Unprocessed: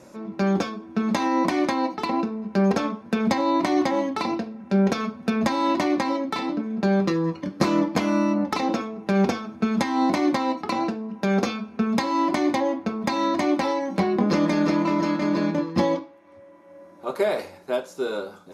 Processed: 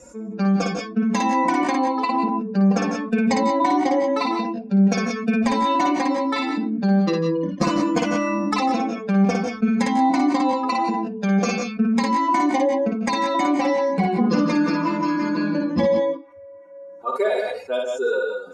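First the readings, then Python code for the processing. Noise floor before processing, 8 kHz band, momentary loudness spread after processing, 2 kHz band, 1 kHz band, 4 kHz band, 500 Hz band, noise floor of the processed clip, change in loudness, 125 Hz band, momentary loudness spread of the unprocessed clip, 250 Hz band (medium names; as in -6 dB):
-48 dBFS, +3.5 dB, 5 LU, +3.0 dB, +4.5 dB, +1.0 dB, +2.5 dB, -39 dBFS, +3.0 dB, +3.0 dB, 7 LU, +2.5 dB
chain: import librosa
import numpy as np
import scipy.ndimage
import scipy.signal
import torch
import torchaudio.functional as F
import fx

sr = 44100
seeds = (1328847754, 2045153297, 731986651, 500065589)

y = fx.bin_expand(x, sr, power=2.0)
y = fx.lowpass_res(y, sr, hz=7800.0, q=2.6)
y = fx.high_shelf(y, sr, hz=3800.0, db=-9.5)
y = y + 0.55 * np.pad(y, (int(4.1 * sr / 1000.0), 0))[:len(y)]
y = fx.echo_multitap(y, sr, ms=(56, 146, 162, 180), db=(-4.5, -14.5, -11.5, -10.5))
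y = fx.env_flatten(y, sr, amount_pct=50)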